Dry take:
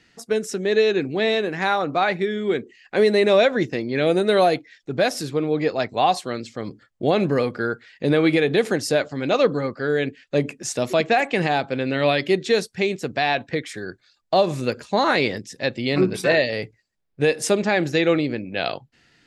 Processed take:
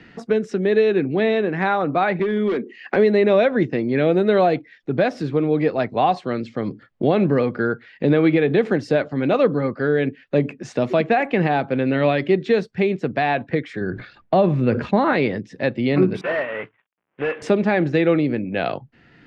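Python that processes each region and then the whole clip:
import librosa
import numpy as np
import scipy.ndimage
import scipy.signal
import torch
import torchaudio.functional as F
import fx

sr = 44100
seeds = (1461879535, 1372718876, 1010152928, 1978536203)

y = fx.chain(x, sr, fx.highpass(hz=190.0, slope=24),
    fx.clip_hard(threshold_db=-21.0),
    fx.band_squash(depth_pct=100), at=(2.19, 2.96))
y = fx.chain(y, sr, fx.bass_treble(bass_db=6, treble_db=-13),
    fx.sustainer(db_per_s=94.0), at=(13.81, 15.13))
y = fx.chain(y, sr, fx.cvsd(bps=16000),
    fx.highpass(hz=1400.0, slope=6),
    fx.leveller(passes=1), at=(16.21, 17.42))
y = scipy.signal.sosfilt(scipy.signal.butter(2, 2500.0, 'lowpass', fs=sr, output='sos'), y)
y = fx.peak_eq(y, sr, hz=190.0, db=4.5, octaves=2.0)
y = fx.band_squash(y, sr, depth_pct=40)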